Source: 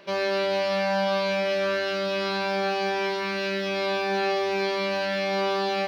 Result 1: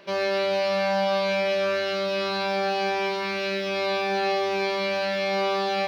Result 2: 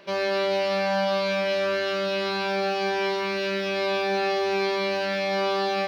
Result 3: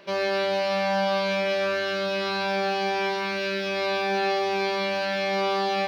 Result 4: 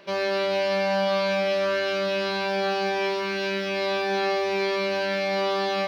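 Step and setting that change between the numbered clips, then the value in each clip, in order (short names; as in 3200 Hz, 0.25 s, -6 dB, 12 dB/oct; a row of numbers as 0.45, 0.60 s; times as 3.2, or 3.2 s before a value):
non-linear reverb, gate: 0.12, 0.3, 0.19, 0.5 s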